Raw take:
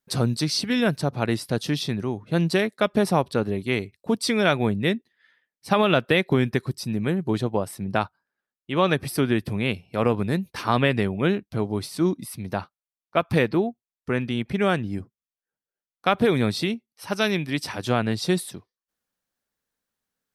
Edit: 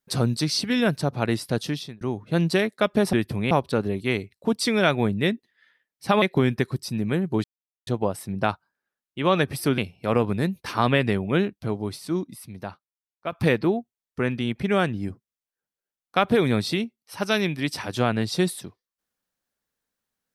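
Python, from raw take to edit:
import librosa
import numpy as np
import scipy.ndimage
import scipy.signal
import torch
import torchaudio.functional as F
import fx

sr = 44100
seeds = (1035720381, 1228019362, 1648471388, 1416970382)

y = fx.edit(x, sr, fx.fade_out_span(start_s=1.6, length_s=0.41),
    fx.cut(start_s=5.84, length_s=0.33),
    fx.insert_silence(at_s=7.39, length_s=0.43),
    fx.move(start_s=9.3, length_s=0.38, to_s=3.13),
    fx.fade_out_to(start_s=11.31, length_s=1.91, curve='qua', floor_db=-8.5), tone=tone)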